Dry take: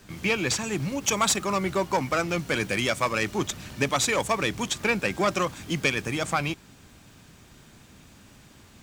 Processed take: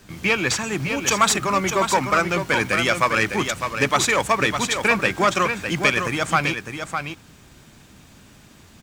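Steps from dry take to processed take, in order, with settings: dynamic EQ 1500 Hz, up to +6 dB, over -39 dBFS, Q 0.87; echo 0.605 s -7 dB; gain +2.5 dB

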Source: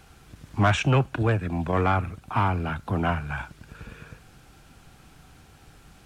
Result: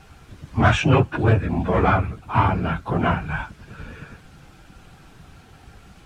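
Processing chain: phase scrambler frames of 50 ms; high shelf 6500 Hz -8.5 dB; gain +5 dB

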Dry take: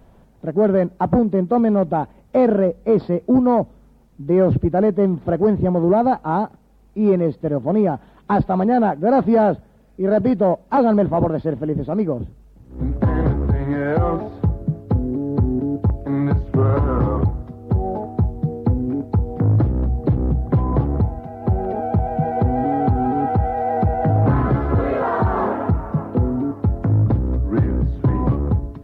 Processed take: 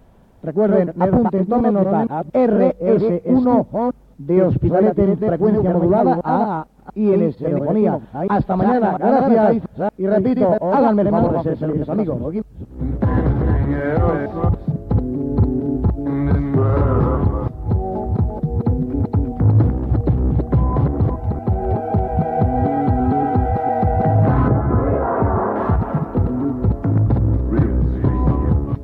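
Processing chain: reverse delay 0.23 s, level -3 dB; 24.48–25.56 LPF 1300 Hz 12 dB/oct

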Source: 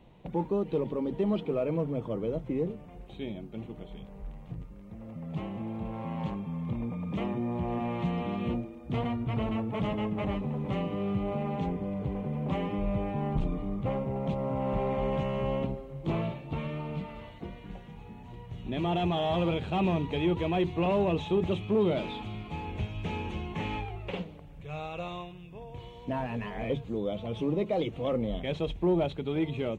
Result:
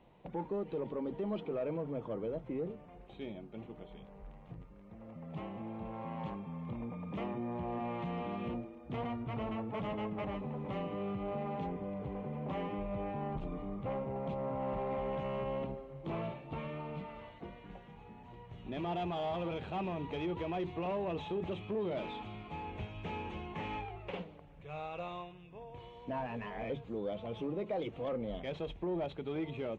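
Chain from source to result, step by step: limiter -23 dBFS, peak gain reduction 5 dB; overdrive pedal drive 9 dB, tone 1500 Hz, clips at -23 dBFS; gain -4.5 dB

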